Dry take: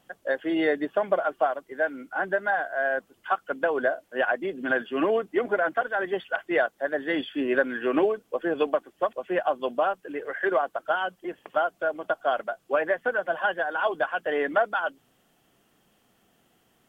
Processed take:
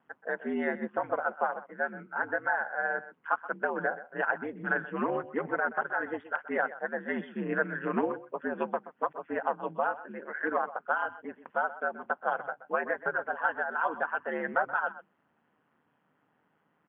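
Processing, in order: ring modulator 77 Hz; speaker cabinet 160–2200 Hz, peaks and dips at 160 Hz +5 dB, 230 Hz +3 dB, 350 Hz -4 dB, 620 Hz -4 dB, 980 Hz +6 dB, 1500 Hz +4 dB; echo 0.127 s -15.5 dB; gain -3 dB

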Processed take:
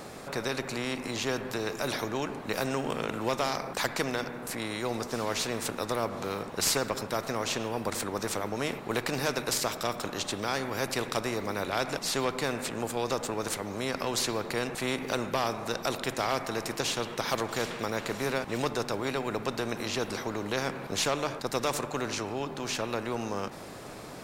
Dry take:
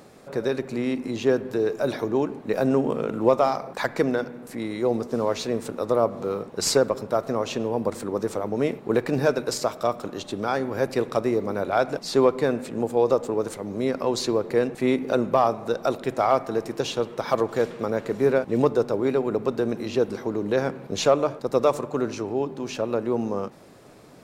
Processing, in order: spectral compressor 2:1; gain -8.5 dB

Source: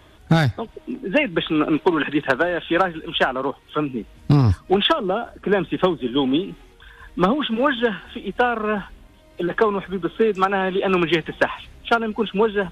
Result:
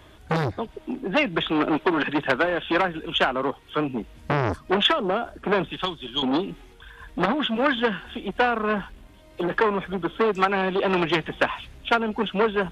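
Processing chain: 5.72–6.23 graphic EQ 125/250/500/2000/4000 Hz -5/-11/-12/-5/+8 dB; core saturation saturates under 1200 Hz

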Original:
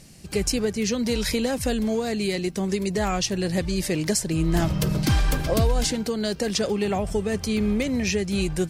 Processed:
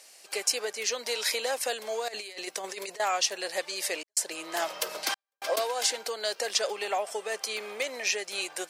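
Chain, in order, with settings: HPF 550 Hz 24 dB/oct; 2.08–3 negative-ratio compressor -37 dBFS, ratio -0.5; 3.99–5.56 step gate "xxxx..x.xxx" 108 bpm -60 dB

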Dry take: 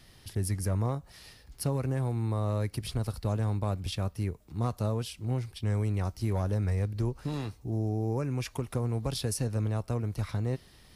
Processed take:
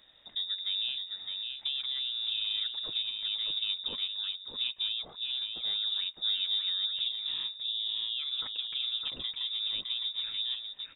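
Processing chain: on a send: echo 0.611 s -5 dB; on the sum: inverted band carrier 3700 Hz; gain -5.5 dB

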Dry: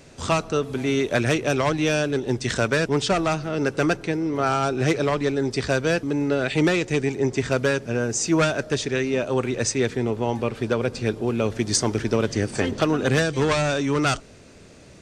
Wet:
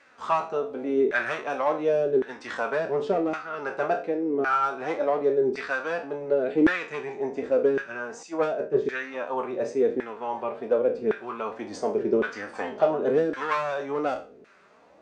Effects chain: spectral trails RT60 0.38 s; flange 1.2 Hz, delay 3.5 ms, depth 1.9 ms, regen -22%; LFO band-pass saw down 0.9 Hz 350–1600 Hz; 8.23–8.85 three-band expander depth 100%; gain +6 dB

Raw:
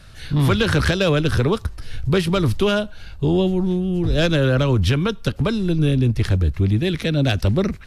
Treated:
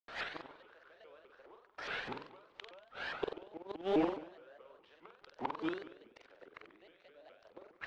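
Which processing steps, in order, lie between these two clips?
gate with hold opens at -35 dBFS; HPF 540 Hz 24 dB/oct; compressor 8:1, threshold -29 dBFS, peak gain reduction 11.5 dB; companded quantiser 4-bit; flipped gate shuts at -27 dBFS, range -34 dB; tape spacing loss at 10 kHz 42 dB; flutter echo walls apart 8.1 m, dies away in 0.62 s; shaped vibrato saw up 4.8 Hz, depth 250 cents; gain +10.5 dB

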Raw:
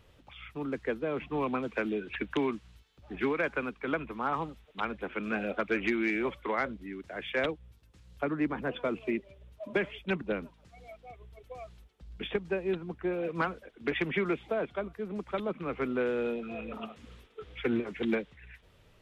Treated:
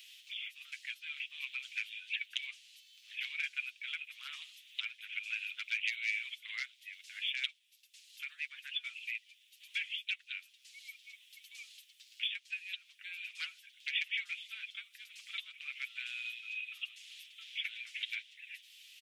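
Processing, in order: steep high-pass 2500 Hz 36 dB/oct; comb 7.5 ms, depth 39%; three-band squash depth 40%; gain +7.5 dB

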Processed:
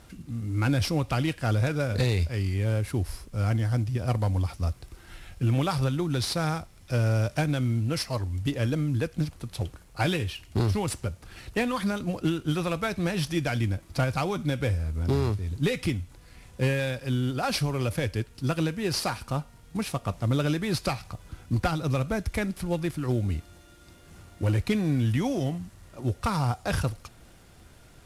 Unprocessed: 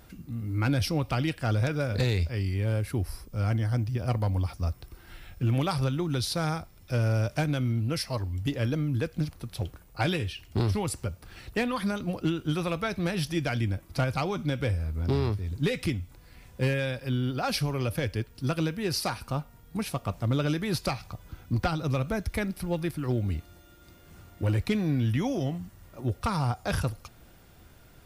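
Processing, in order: CVSD 64 kbps; gain +1.5 dB

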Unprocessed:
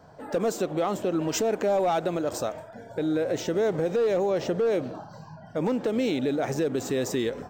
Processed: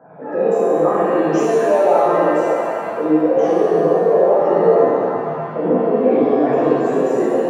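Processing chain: formant sharpening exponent 2; HPF 150 Hz 24 dB/oct; in parallel at -2.5 dB: compressor, threshold -33 dBFS, peak gain reduction 11.5 dB; on the sum: resonant high shelf 2700 Hz -12.5 dB, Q 3; shimmer reverb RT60 2 s, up +7 st, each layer -8 dB, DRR -10 dB; gain -2 dB

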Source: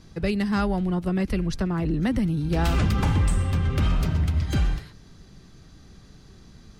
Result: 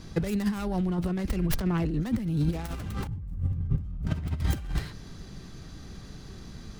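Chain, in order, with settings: tracing distortion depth 0.39 ms; 3.07–4.07 EQ curve 150 Hz 0 dB, 370 Hz -13 dB, 2700 Hz -24 dB; negative-ratio compressor -27 dBFS, ratio -0.5

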